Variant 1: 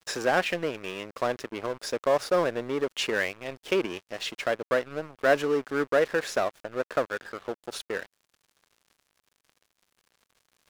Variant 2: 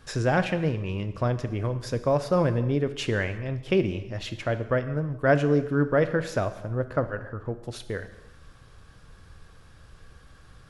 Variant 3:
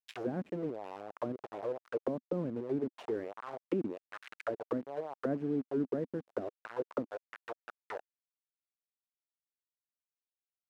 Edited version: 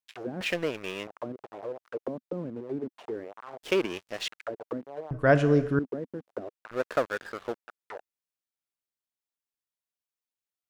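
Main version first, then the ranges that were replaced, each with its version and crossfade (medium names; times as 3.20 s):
3
0.41–1.07 s: from 1
3.63–4.28 s: from 1
5.11–5.79 s: from 2
6.71–7.59 s: from 1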